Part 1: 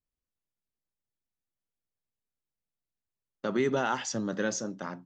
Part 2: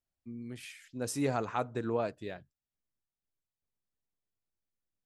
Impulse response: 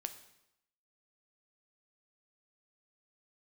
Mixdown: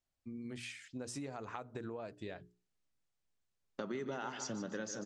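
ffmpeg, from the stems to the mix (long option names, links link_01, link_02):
-filter_complex "[0:a]adelay=350,volume=1dB,asplit=2[link_01][link_02];[link_02]volume=-11.5dB[link_03];[1:a]bandreject=frequency=60:width_type=h:width=6,bandreject=frequency=120:width_type=h:width=6,bandreject=frequency=180:width_type=h:width=6,bandreject=frequency=240:width_type=h:width=6,bandreject=frequency=300:width_type=h:width=6,bandreject=frequency=360:width_type=h:width=6,bandreject=frequency=420:width_type=h:width=6,acompressor=threshold=-38dB:ratio=6,volume=2dB[link_04];[link_03]aecho=0:1:149|298|447|596|745|894:1|0.45|0.202|0.0911|0.041|0.0185[link_05];[link_01][link_04][link_05]amix=inputs=3:normalize=0,lowpass=frequency=8700:width=0.5412,lowpass=frequency=8700:width=1.3066,acompressor=threshold=-40dB:ratio=4"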